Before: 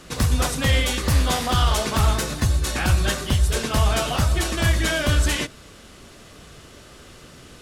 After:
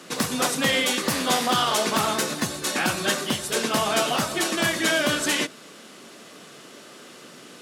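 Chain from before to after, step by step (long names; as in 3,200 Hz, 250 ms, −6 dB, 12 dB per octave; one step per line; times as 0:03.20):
high-pass filter 190 Hz 24 dB per octave
level +1.5 dB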